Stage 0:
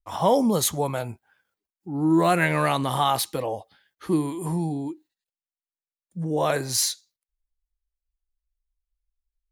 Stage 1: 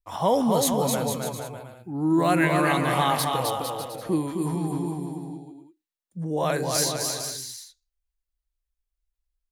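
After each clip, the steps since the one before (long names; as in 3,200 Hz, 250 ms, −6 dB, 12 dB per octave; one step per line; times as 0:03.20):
bouncing-ball delay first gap 260 ms, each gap 0.75×, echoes 5
level −2 dB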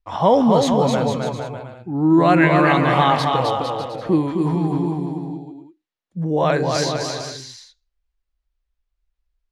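high-frequency loss of the air 150 metres
level +7.5 dB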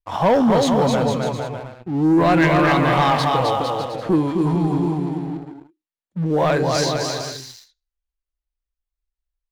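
leveller curve on the samples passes 2
level −6 dB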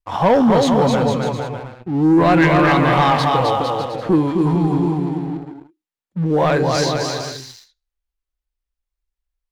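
high-shelf EQ 5,900 Hz −5 dB
notch filter 640 Hz, Q 16
level +2.5 dB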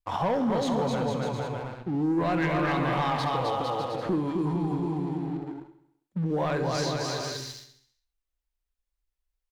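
downward compressor 2.5 to 1, threshold −27 dBFS, peak gain reduction 11 dB
on a send: repeating echo 67 ms, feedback 58%, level −13 dB
on the sum: level −2.5 dB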